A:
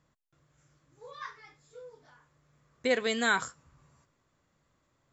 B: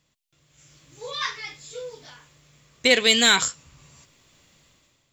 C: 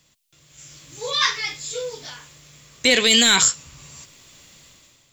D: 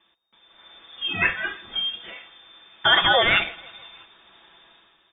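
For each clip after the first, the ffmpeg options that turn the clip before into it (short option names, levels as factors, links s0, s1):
-filter_complex "[0:a]highshelf=f=2000:t=q:w=1.5:g=9.5,dynaudnorm=f=260:g=5:m=4.73,asplit=2[s0][s1];[s1]asoftclip=type=tanh:threshold=0.2,volume=0.631[s2];[s0][s2]amix=inputs=2:normalize=0,volume=0.562"
-filter_complex "[0:a]highshelf=f=3300:g=7.5,acrossover=split=220[s0][s1];[s1]alimiter=limit=0.237:level=0:latency=1:release=27[s2];[s0][s2]amix=inputs=2:normalize=0,volume=2"
-af "aecho=1:1:6.3:0.45,aecho=1:1:161|322|483|644:0.0631|0.036|0.0205|0.0117,lowpass=f=3100:t=q:w=0.5098,lowpass=f=3100:t=q:w=0.6013,lowpass=f=3100:t=q:w=0.9,lowpass=f=3100:t=q:w=2.563,afreqshift=-3700"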